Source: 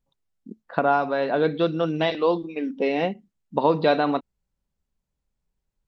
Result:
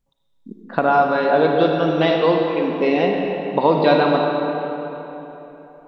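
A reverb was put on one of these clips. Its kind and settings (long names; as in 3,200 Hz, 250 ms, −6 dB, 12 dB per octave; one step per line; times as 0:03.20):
comb and all-pass reverb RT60 3.6 s, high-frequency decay 0.65×, pre-delay 15 ms, DRR 1 dB
level +3.5 dB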